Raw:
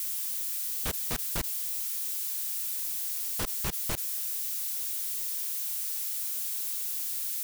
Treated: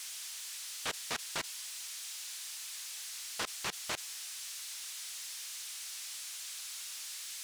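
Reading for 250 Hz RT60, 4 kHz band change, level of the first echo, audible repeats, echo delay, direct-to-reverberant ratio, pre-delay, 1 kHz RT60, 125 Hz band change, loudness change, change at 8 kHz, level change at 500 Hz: no reverb, +0.5 dB, no echo, no echo, no echo, no reverb, no reverb, no reverb, -16.0 dB, -10.0 dB, -5.5 dB, -4.0 dB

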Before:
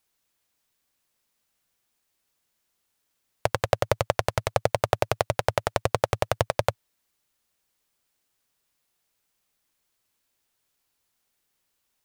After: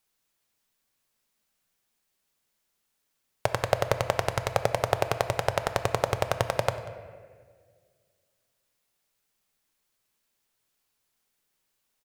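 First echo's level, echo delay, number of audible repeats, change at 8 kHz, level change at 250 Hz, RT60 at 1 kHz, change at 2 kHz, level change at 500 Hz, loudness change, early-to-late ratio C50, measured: -21.0 dB, 189 ms, 1, -1.0 dB, -1.0 dB, 1.5 s, -1.0 dB, -2.0 dB, -1.5 dB, 10.5 dB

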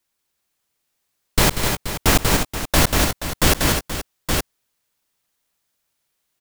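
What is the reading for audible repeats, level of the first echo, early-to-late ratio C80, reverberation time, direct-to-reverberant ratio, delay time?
5, -19.0 dB, no reverb, no reverb, no reverb, 128 ms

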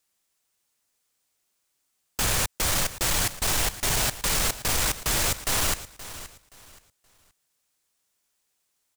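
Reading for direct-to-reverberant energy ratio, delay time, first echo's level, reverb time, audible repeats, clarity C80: no reverb, 524 ms, -15.0 dB, no reverb, 2, no reverb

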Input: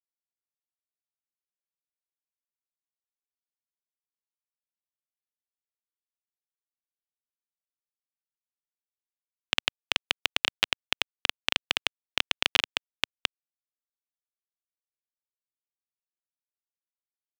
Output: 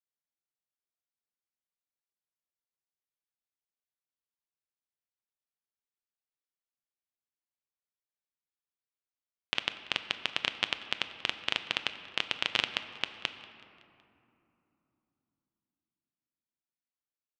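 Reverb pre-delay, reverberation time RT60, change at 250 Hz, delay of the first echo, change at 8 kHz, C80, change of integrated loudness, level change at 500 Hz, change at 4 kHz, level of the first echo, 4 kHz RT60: 9 ms, 3.0 s, -3.0 dB, 187 ms, -9.0 dB, 11.5 dB, -4.5 dB, -3.0 dB, -5.0 dB, -21.0 dB, 1.6 s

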